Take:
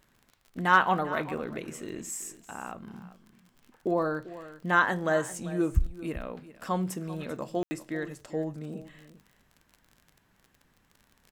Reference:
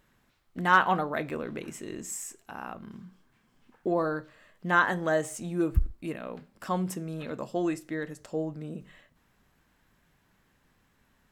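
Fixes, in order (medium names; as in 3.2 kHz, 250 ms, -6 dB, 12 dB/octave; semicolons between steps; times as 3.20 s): de-click; room tone fill 7.63–7.71 s; inverse comb 392 ms -16 dB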